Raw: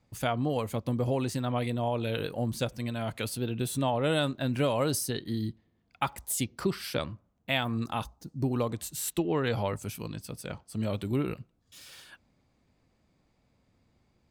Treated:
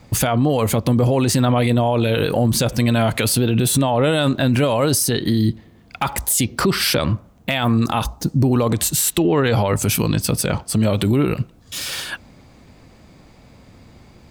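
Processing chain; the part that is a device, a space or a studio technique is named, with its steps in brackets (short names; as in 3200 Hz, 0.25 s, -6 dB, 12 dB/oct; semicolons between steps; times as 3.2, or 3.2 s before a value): loud club master (compressor 2:1, threshold -32 dBFS, peak gain reduction 5.5 dB; hard clip -20 dBFS, distortion -38 dB; maximiser +31 dB); gain -8 dB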